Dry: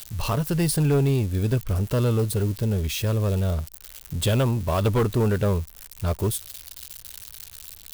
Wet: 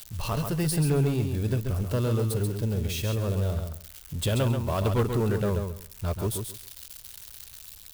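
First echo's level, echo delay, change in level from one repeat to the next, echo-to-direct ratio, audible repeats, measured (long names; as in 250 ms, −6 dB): −6.0 dB, 135 ms, −14.5 dB, −6.0 dB, 3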